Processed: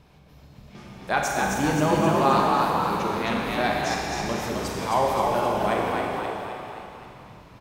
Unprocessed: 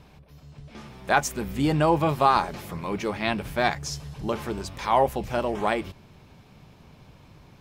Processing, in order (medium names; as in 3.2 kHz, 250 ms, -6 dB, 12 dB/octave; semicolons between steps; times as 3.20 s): 4.01–4.74 s: treble shelf 6 kHz +7 dB; on a send: frequency-shifting echo 263 ms, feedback 56%, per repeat +51 Hz, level -3.5 dB; on the sum: Schroeder reverb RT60 2.4 s, combs from 31 ms, DRR -0.5 dB; trim -3.5 dB